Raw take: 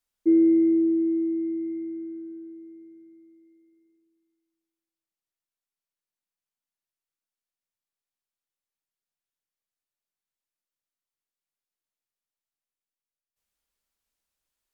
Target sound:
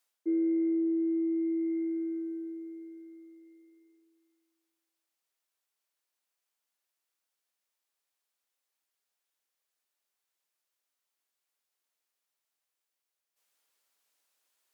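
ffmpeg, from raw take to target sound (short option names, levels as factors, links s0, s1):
-af "highpass=400,areverse,acompressor=threshold=0.0158:ratio=4,areverse,volume=2.24"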